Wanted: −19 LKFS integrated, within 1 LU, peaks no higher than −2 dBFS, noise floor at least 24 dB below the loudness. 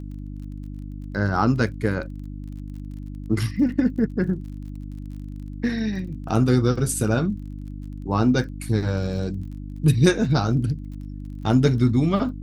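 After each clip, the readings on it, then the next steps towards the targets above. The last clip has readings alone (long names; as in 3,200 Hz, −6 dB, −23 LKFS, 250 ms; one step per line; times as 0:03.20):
crackle rate 34 per second; mains hum 50 Hz; hum harmonics up to 300 Hz; level of the hum −32 dBFS; integrated loudness −22.5 LKFS; sample peak −4.0 dBFS; target loudness −19.0 LKFS
→ click removal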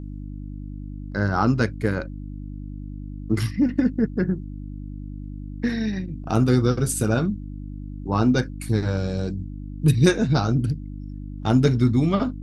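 crackle rate 0.080 per second; mains hum 50 Hz; hum harmonics up to 300 Hz; level of the hum −32 dBFS
→ hum removal 50 Hz, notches 6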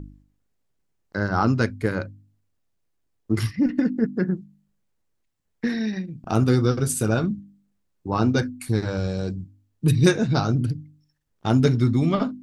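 mains hum none found; integrated loudness −23.5 LKFS; sample peak −4.5 dBFS; target loudness −19.0 LKFS
→ level +4.5 dB
brickwall limiter −2 dBFS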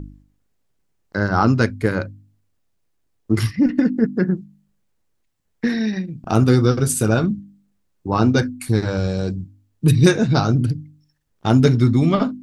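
integrated loudness −19.0 LKFS; sample peak −2.0 dBFS; background noise floor −68 dBFS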